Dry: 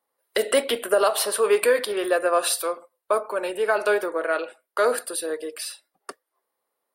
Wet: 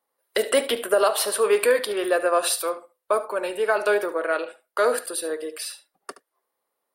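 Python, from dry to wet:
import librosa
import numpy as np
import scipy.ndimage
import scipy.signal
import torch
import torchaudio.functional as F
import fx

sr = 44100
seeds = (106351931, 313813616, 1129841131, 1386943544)

y = x + 10.0 ** (-15.0 / 20.0) * np.pad(x, (int(73 * sr / 1000.0), 0))[:len(x)]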